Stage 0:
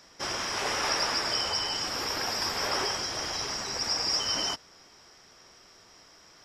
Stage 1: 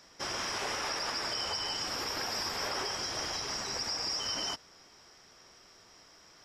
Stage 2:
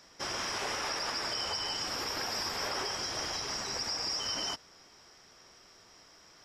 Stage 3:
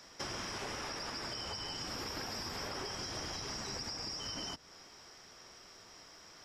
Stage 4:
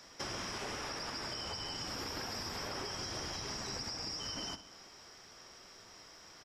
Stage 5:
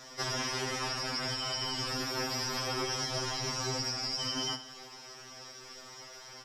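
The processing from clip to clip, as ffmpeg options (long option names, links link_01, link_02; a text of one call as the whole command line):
ffmpeg -i in.wav -af "alimiter=limit=-22.5dB:level=0:latency=1:release=83,volume=-2.5dB" out.wav
ffmpeg -i in.wav -af anull out.wav
ffmpeg -i in.wav -filter_complex "[0:a]acrossover=split=310[link_01][link_02];[link_02]acompressor=threshold=-41dB:ratio=10[link_03];[link_01][link_03]amix=inputs=2:normalize=0,volume=2dB" out.wav
ffmpeg -i in.wav -af "aecho=1:1:65|130|195|260|325|390:0.211|0.118|0.0663|0.0371|0.0208|0.0116" out.wav
ffmpeg -i in.wav -af "afftfilt=real='re*2.45*eq(mod(b,6),0)':imag='im*2.45*eq(mod(b,6),0)':win_size=2048:overlap=0.75,volume=9dB" out.wav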